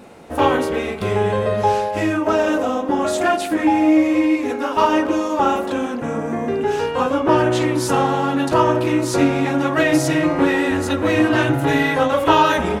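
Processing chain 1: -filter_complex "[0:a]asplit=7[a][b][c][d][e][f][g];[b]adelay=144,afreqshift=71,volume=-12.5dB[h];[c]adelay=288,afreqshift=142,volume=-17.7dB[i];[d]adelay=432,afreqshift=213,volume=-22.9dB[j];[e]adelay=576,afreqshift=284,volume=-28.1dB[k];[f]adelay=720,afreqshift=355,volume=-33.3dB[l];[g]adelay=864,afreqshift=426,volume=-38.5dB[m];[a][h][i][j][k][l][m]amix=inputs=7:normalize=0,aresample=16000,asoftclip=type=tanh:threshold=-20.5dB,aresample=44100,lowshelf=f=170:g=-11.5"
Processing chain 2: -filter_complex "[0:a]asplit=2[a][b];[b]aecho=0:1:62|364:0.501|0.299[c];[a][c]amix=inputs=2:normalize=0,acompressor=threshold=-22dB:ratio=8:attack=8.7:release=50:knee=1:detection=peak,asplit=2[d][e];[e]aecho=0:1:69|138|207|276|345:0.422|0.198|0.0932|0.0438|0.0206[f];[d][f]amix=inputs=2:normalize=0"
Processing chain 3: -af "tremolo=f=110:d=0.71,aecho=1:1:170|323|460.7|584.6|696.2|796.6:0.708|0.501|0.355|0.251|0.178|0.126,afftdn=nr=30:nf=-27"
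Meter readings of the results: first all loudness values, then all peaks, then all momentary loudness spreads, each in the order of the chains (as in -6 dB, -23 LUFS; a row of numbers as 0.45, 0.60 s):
-25.5, -23.0, -19.0 LUFS; -16.0, -10.5, -2.0 dBFS; 3, 2, 6 LU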